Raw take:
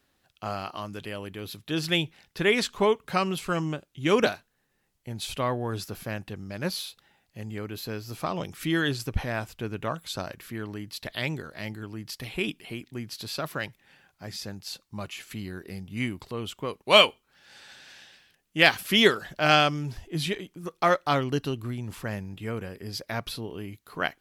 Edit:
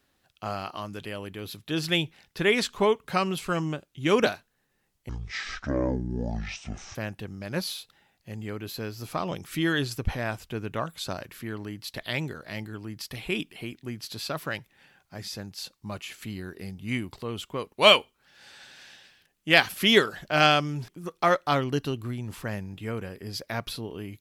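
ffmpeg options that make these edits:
-filter_complex "[0:a]asplit=4[a][b][c][d];[a]atrim=end=5.094[e];[b]atrim=start=5.09:end=6.04,asetpts=PTS-STARTPTS,asetrate=22491,aresample=44100,atrim=end_sample=82147,asetpts=PTS-STARTPTS[f];[c]atrim=start=6.036:end=19.972[g];[d]atrim=start=20.478[h];[e][f]acrossfade=d=0.004:c1=hsin:c2=hsin[i];[i][g]acrossfade=d=0.004:c1=hsin:c2=hsin[j];[j][h]acrossfade=d=0.004:c1=hsin:c2=hsin"

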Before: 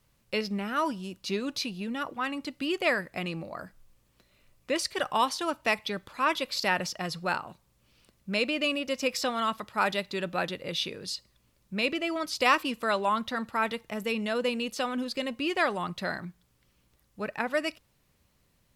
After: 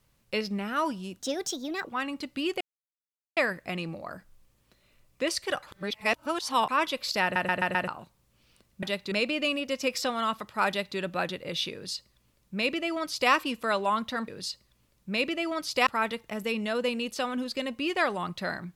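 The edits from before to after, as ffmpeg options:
-filter_complex "[0:a]asplit=15[a][b][c][d][e][f][g][h][i][j][k][l][m][n][o];[a]atrim=end=1.194[p];[b]atrim=start=1.19:end=2.09,asetpts=PTS-STARTPTS,asetrate=60417,aresample=44100[q];[c]atrim=start=2.086:end=2.85,asetpts=PTS-STARTPTS,afade=t=out:st=0.76:d=0.004:c=hsin,apad=pad_dur=0.76[r];[d]atrim=start=2.85:end=5.112,asetpts=PTS-STARTPTS,afade=t=in:d=0.004:c=hsin[s];[e]atrim=start=5.108:end=6.172,asetpts=PTS-STARTPTS,areverse[t];[f]atrim=start=6.168:end=6.842[u];[g]atrim=start=6.708:end=6.842[v];[h]atrim=start=6.708:end=6.842[w];[i]atrim=start=6.708:end=6.842[x];[j]atrim=start=6.708:end=6.842[y];[k]atrim=start=7.358:end=8.312[z];[l]atrim=start=9.878:end=10.172[aa];[m]atrim=start=8.308:end=13.472[ab];[n]atrim=start=10.918:end=12.512[ac];[o]atrim=start=13.468[ad];[p][q]acrossfade=d=0.004:c1=hsin:c2=hsin[ae];[r][s]concat=n=2:v=0:a=1[af];[ae][af]acrossfade=d=0.004:c1=hsin:c2=hsin[ag];[ag][t]acrossfade=d=0.004:c1=hsin:c2=hsin[ah];[ah][u]acrossfade=d=0.004:c1=hsin:c2=hsin[ai];[ai][v]acrossfade=d=0.004:c1=hsin:c2=hsin[aj];[aj][w]acrossfade=d=0.004:c1=hsin:c2=hsin[ak];[ak][x]acrossfade=d=0.004:c1=hsin:c2=hsin[al];[al][y]acrossfade=d=0.004:c1=hsin:c2=hsin[am];[am][z]acrossfade=d=0.004:c1=hsin:c2=hsin[an];[an][aa]acrossfade=d=0.004:c1=hsin:c2=hsin[ao];[ao][ab]acrossfade=d=0.004:c1=hsin:c2=hsin[ap];[ap][ac]acrossfade=d=0.004:c1=hsin:c2=hsin[aq];[aq][ad]acrossfade=d=0.004:c1=hsin:c2=hsin"

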